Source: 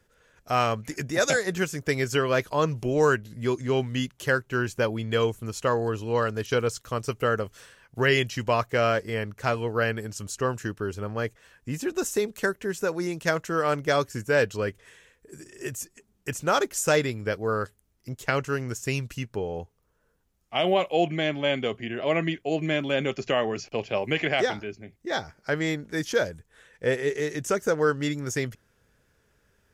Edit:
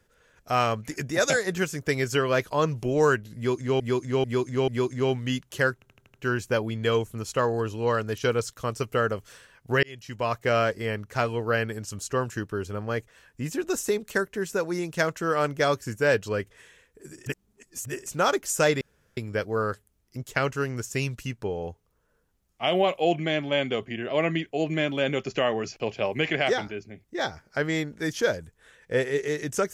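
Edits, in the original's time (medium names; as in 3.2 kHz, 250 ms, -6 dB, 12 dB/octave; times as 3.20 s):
3.36–3.80 s: loop, 4 plays
4.42 s: stutter 0.08 s, 6 plays
8.11–8.76 s: fade in
15.54–16.34 s: reverse
17.09 s: insert room tone 0.36 s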